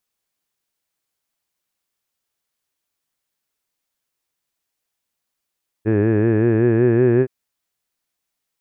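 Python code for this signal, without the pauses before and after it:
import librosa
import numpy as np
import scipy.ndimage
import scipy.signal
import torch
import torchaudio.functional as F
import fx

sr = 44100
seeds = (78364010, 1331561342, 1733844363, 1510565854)

y = fx.formant_vowel(sr, seeds[0], length_s=1.42, hz=105.0, glide_st=3.0, vibrato_hz=5.3, vibrato_st=0.9, f1_hz=380.0, f2_hz=1700.0, f3_hz=2500.0)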